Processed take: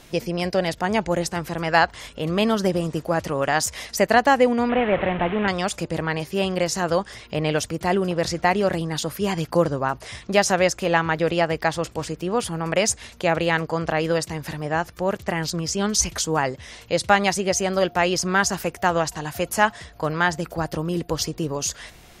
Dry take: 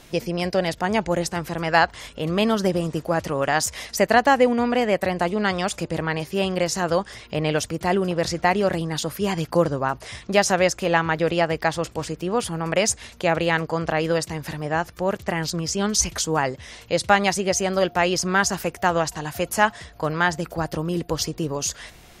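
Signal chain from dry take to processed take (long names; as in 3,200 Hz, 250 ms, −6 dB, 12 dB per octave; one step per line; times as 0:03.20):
0:04.69–0:05.48: linear delta modulator 16 kbit/s, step −22.5 dBFS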